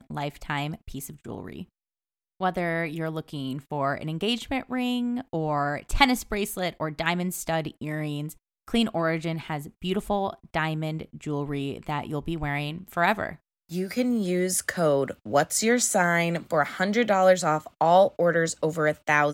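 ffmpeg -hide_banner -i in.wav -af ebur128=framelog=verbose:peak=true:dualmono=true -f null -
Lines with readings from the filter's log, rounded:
Integrated loudness:
  I:         -23.1 LUFS
  Threshold: -33.4 LUFS
Loudness range:
  LRA:         7.7 LU
  Threshold: -43.7 LUFS
  LRA low:   -27.3 LUFS
  LRA high:  -19.6 LUFS
True peak:
  Peak:       -3.8 dBFS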